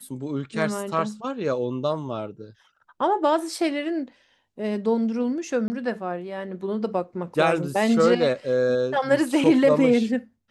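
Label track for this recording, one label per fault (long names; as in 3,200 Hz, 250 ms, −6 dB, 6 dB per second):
5.680000	5.700000	drop-out 20 ms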